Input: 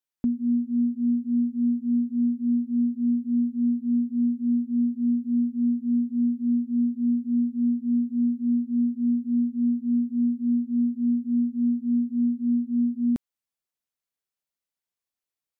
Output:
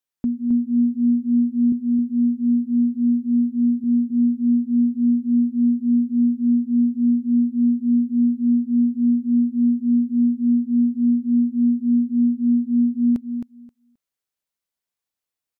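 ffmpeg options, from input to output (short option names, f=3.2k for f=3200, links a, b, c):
-filter_complex "[0:a]asettb=1/sr,asplit=3[a][b][c];[a]atrim=end=1.724[d];[b]atrim=start=1.72:end=3.84,asetpts=PTS-STARTPTS,afade=t=in:d=0.004:c=qsin,afade=t=out:st=2.116:d=0.004:c=qsin,highpass=150[e];[c]atrim=start=3.836[f];[d][e]acrossfade=d=0.004:c1=hsin:c2=qsin[g];[g][f]acrossfade=d=0.004:c1=qsin:c2=hsin,aecho=1:1:265|530|795:0.447|0.067|0.0101,volume=2dB"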